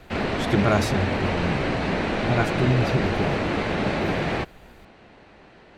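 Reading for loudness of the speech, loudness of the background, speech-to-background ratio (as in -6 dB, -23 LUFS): -26.5 LUFS, -25.0 LUFS, -1.5 dB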